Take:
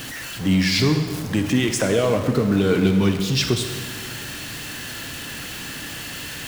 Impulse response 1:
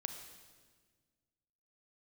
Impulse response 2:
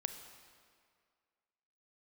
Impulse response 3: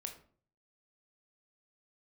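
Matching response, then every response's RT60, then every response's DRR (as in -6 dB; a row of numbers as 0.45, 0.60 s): 1; 1.5, 2.1, 0.50 s; 6.0, 7.5, 4.0 dB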